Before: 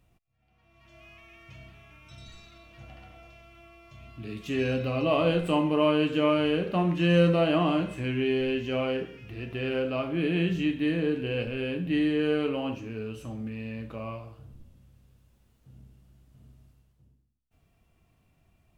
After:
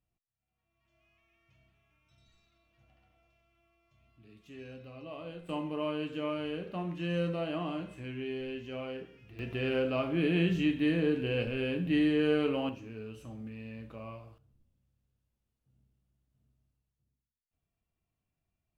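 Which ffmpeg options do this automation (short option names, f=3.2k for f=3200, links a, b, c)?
-af "asetnsamples=n=441:p=0,asendcmd='5.49 volume volume -11dB;9.39 volume volume -1.5dB;12.69 volume volume -7.5dB;14.38 volume volume -19.5dB',volume=-19.5dB"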